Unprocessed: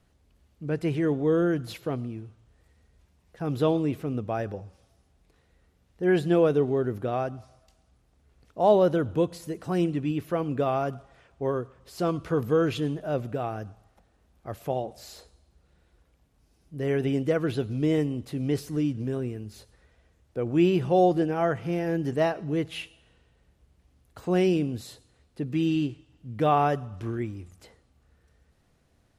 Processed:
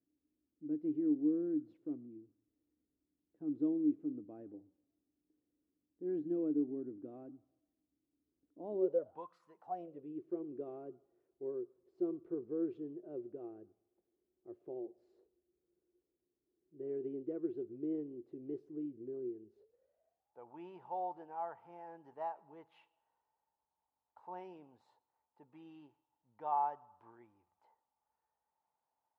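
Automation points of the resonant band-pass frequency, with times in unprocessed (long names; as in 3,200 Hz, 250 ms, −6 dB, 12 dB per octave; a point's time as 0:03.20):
resonant band-pass, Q 14
0:08.74 300 Hz
0:09.36 1,300 Hz
0:10.17 360 Hz
0:19.46 360 Hz
0:20.38 890 Hz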